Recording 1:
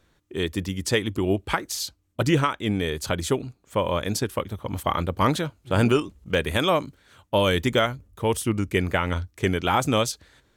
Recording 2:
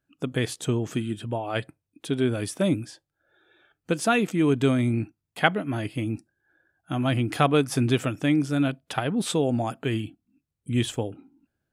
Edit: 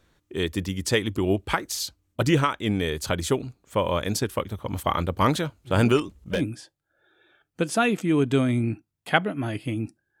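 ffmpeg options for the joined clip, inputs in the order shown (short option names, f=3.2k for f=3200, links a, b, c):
-filter_complex "[0:a]asettb=1/sr,asplit=3[a][b][c];[a]atrim=end=5.974[d];[b]atrim=start=5.97:end=6.45,asetpts=PTS-STARTPTS,afade=t=in:d=0.004:c=qsin,afade=t=out:st=0.476:d=0.004:c=qsin,aeval=exprs='clip(val(0),-1,0.133)':c=same[e];[c]atrim=start=6.446[f];[d][e]acrossfade=d=0.004:c1=hsin:c2=qsin[g];[g][f]acrossfade=d=0.004:c1=qsin:c2=hsin,apad=whole_dur=10.2,atrim=end=10.2,atrim=end=6.45,asetpts=PTS-STARTPTS[h];[1:a]atrim=start=2.61:end=6.5,asetpts=PTS-STARTPTS[i];[h][i]acrossfade=d=0.14:c1=tri:c2=tri"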